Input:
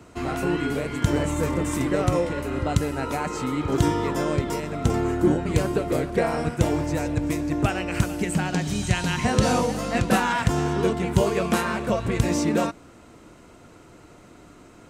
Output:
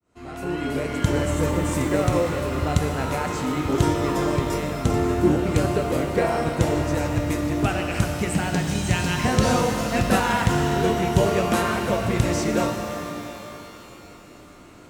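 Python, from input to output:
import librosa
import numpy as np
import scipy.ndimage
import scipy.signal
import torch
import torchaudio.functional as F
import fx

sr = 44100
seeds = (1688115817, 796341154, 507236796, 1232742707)

y = fx.fade_in_head(x, sr, length_s=0.84)
y = fx.rev_shimmer(y, sr, seeds[0], rt60_s=3.2, semitones=12, shimmer_db=-8, drr_db=4.5)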